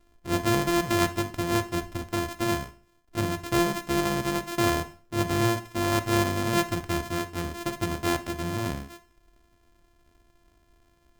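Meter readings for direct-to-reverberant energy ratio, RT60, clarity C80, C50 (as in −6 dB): 10.0 dB, 0.40 s, 20.5 dB, 15.5 dB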